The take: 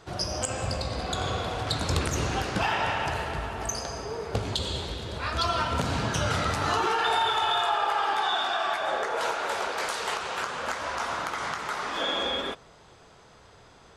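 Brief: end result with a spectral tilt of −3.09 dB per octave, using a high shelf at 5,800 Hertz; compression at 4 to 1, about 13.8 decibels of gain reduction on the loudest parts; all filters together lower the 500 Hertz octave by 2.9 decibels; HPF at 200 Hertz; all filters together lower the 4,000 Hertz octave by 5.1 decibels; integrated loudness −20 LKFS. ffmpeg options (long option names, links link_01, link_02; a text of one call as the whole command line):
ffmpeg -i in.wav -af "highpass=200,equalizer=frequency=500:width_type=o:gain=-3.5,equalizer=frequency=4000:width_type=o:gain=-4,highshelf=frequency=5800:gain=-7,acompressor=threshold=-41dB:ratio=4,volume=21.5dB" out.wav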